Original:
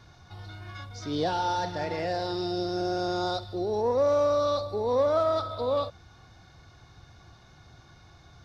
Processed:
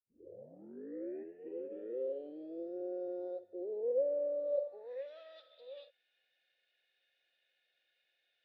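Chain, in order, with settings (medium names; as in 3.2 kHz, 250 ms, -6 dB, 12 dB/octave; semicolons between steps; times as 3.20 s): tape start-up on the opening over 2.75 s; band-pass sweep 350 Hz -> 3.1 kHz, 4.44–5.09 s; vowel filter e; trim +3 dB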